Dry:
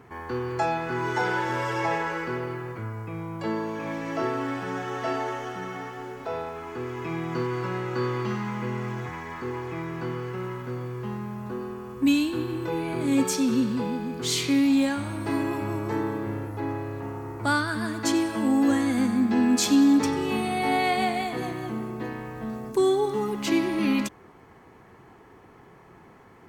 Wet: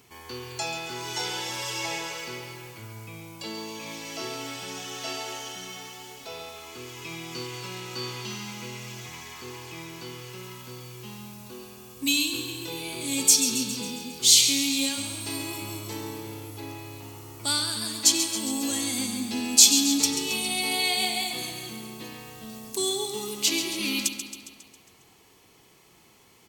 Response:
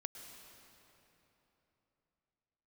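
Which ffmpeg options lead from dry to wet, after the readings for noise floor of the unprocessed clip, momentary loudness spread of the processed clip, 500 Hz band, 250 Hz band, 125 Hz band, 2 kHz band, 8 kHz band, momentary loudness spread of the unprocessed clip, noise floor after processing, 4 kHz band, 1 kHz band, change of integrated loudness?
-52 dBFS, 21 LU, -9.0 dB, -9.0 dB, -8.5 dB, -2.5 dB, +13.5 dB, 12 LU, -57 dBFS, +10.5 dB, -8.5 dB, +2.0 dB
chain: -af "aecho=1:1:136|272|408|544|680|816|952:0.335|0.191|0.109|0.062|0.0354|0.0202|0.0115,aexciter=amount=11.2:drive=3:freq=2.5k,volume=-9.5dB"

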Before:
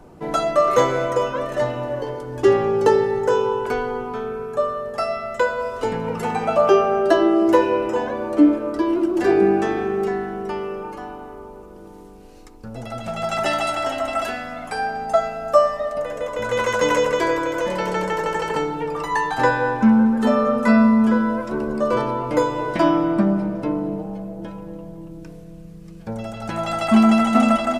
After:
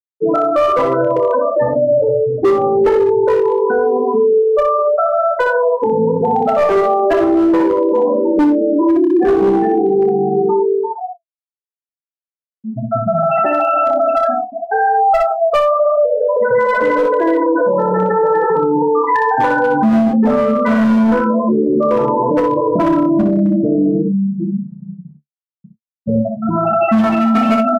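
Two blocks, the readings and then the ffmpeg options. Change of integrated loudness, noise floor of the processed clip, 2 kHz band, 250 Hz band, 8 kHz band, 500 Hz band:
+6.0 dB, under -85 dBFS, +3.0 dB, +5.0 dB, under -10 dB, +7.5 dB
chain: -filter_complex "[0:a]lowpass=f=2.1k:p=1,afftfilt=real='re*gte(hypot(re,im),0.178)':imag='im*gte(hypot(re,im),0.178)':win_size=1024:overlap=0.75,highpass=110,asplit=2[a][b];[b]acompressor=threshold=-28dB:ratio=12,volume=-2dB[c];[a][c]amix=inputs=2:normalize=0,flanger=delay=8.6:depth=5.6:regen=40:speed=0.93:shape=sinusoidal,asoftclip=type=hard:threshold=-16dB,asplit=2[d][e];[e]adelay=27,volume=-13dB[f];[d][f]amix=inputs=2:normalize=0,aecho=1:1:28|61:0.2|0.531,alimiter=level_in=21.5dB:limit=-1dB:release=50:level=0:latency=1,volume=-6dB"

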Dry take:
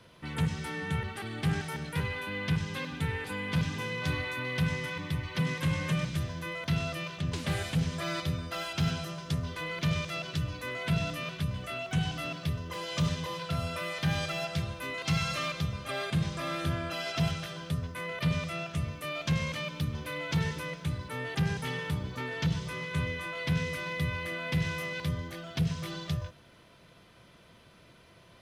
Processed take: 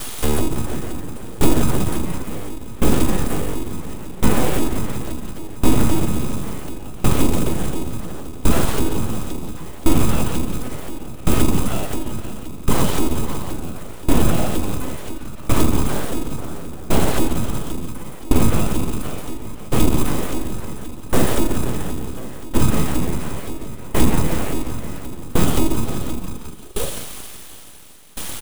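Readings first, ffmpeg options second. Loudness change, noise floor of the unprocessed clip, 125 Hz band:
+10.0 dB, -57 dBFS, +7.0 dB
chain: -filter_complex "[0:a]bandreject=f=61.9:t=h:w=4,bandreject=f=123.8:t=h:w=4,acrossover=split=350|2100[a][b][c];[a]acrusher=samples=35:mix=1:aa=0.000001[d];[c]acompressor=threshold=-58dB:ratio=6[e];[d][b][e]amix=inputs=3:normalize=0,highshelf=f=11k:g=9,asplit=7[f][g][h][i][j][k][l];[g]adelay=173,afreqshift=-98,volume=-5dB[m];[h]adelay=346,afreqshift=-196,volume=-10.8dB[n];[i]adelay=519,afreqshift=-294,volume=-16.7dB[o];[j]adelay=692,afreqshift=-392,volume=-22.5dB[p];[k]adelay=865,afreqshift=-490,volume=-28.4dB[q];[l]adelay=1038,afreqshift=-588,volume=-34.2dB[r];[f][m][n][o][p][q][r]amix=inputs=7:normalize=0,aexciter=amount=1.4:drive=3.7:freq=2.7k,equalizer=f=250:t=o:w=1:g=7,equalizer=f=500:t=o:w=1:g=-9,equalizer=f=2k:t=o:w=1:g=-10,equalizer=f=8k:t=o:w=1:g=10,aeval=exprs='abs(val(0))':c=same,acrossover=split=720|3900[s][t][u];[s]acompressor=threshold=-29dB:ratio=4[v];[t]acompressor=threshold=-55dB:ratio=4[w];[u]acompressor=threshold=-52dB:ratio=4[x];[v][w][x]amix=inputs=3:normalize=0,alimiter=level_in=29dB:limit=-1dB:release=50:level=0:latency=1,aeval=exprs='val(0)*pow(10,-22*if(lt(mod(0.71*n/s,1),2*abs(0.71)/1000),1-mod(0.71*n/s,1)/(2*abs(0.71)/1000),(mod(0.71*n/s,1)-2*abs(0.71)/1000)/(1-2*abs(0.71)/1000))/20)':c=same"

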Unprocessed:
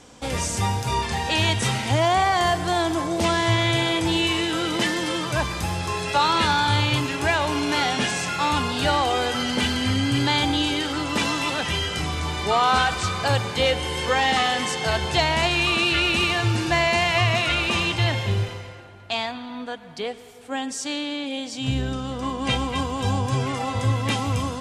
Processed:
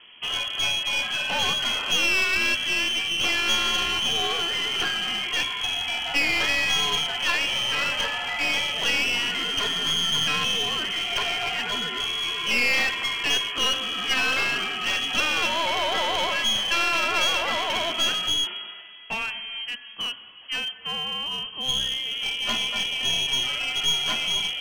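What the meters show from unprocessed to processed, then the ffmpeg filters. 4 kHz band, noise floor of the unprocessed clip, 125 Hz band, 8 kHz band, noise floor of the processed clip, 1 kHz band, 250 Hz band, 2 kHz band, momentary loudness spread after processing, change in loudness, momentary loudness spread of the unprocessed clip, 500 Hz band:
+4.0 dB, -38 dBFS, -19.5 dB, 0.0 dB, -42 dBFS, -7.5 dB, -13.0 dB, +0.5 dB, 7 LU, -0.5 dB, 9 LU, -8.5 dB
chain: -af "lowpass=f=2.9k:t=q:w=0.5098,lowpass=f=2.9k:t=q:w=0.6013,lowpass=f=2.9k:t=q:w=0.9,lowpass=f=2.9k:t=q:w=2.563,afreqshift=-3400,bandreject=f=131:t=h:w=4,bandreject=f=262:t=h:w=4,bandreject=f=393:t=h:w=4,bandreject=f=524:t=h:w=4,bandreject=f=655:t=h:w=4,bandreject=f=786:t=h:w=4,bandreject=f=917:t=h:w=4,bandreject=f=1.048k:t=h:w=4,bandreject=f=1.179k:t=h:w=4,bandreject=f=1.31k:t=h:w=4,bandreject=f=1.441k:t=h:w=4,bandreject=f=1.572k:t=h:w=4,bandreject=f=1.703k:t=h:w=4,bandreject=f=1.834k:t=h:w=4,bandreject=f=1.965k:t=h:w=4,bandreject=f=2.096k:t=h:w=4,bandreject=f=2.227k:t=h:w=4,bandreject=f=2.358k:t=h:w=4,bandreject=f=2.489k:t=h:w=4,bandreject=f=2.62k:t=h:w=4,bandreject=f=2.751k:t=h:w=4,aeval=exprs='clip(val(0),-1,0.0501)':c=same"

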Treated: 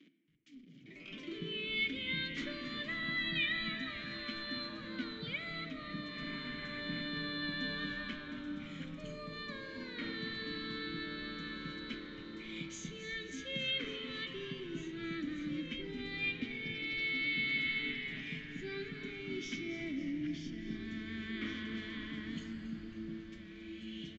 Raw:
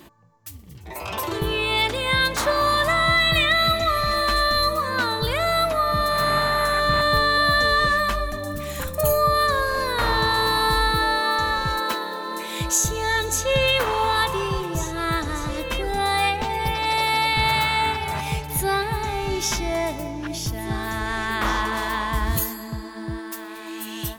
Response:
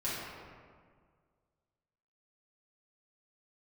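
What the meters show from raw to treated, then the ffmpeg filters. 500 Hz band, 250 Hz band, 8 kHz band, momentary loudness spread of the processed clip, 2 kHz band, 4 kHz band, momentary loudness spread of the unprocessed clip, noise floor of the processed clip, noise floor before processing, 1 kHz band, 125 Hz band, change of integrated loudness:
-22.5 dB, -8.5 dB, -29.5 dB, 11 LU, -15.5 dB, -16.0 dB, 12 LU, -51 dBFS, -36 dBFS, -32.0 dB, -19.0 dB, -17.5 dB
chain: -filter_complex "[0:a]acrusher=bits=6:mix=0:aa=0.5,asplit=3[a][b][c];[a]bandpass=f=270:t=q:w=8,volume=0dB[d];[b]bandpass=f=2.29k:t=q:w=8,volume=-6dB[e];[c]bandpass=f=3.01k:t=q:w=8,volume=-9dB[f];[d][e][f]amix=inputs=3:normalize=0,lowshelf=f=120:t=q:w=3:g=-10,bandreject=f=50:t=h:w=6,bandreject=f=100:t=h:w=6,bandreject=f=150:t=h:w=6,asplit=8[g][h][i][j][k][l][m][n];[h]adelay=274,afreqshift=-130,volume=-13dB[o];[i]adelay=548,afreqshift=-260,volume=-17.2dB[p];[j]adelay=822,afreqshift=-390,volume=-21.3dB[q];[k]adelay=1096,afreqshift=-520,volume=-25.5dB[r];[l]adelay=1370,afreqshift=-650,volume=-29.6dB[s];[m]adelay=1644,afreqshift=-780,volume=-33.8dB[t];[n]adelay=1918,afreqshift=-910,volume=-37.9dB[u];[g][o][p][q][r][s][t][u]amix=inputs=8:normalize=0,asplit=2[v][w];[1:a]atrim=start_sample=2205[x];[w][x]afir=irnorm=-1:irlink=0,volume=-13dB[y];[v][y]amix=inputs=2:normalize=0,aresample=16000,aresample=44100,volume=-3.5dB"

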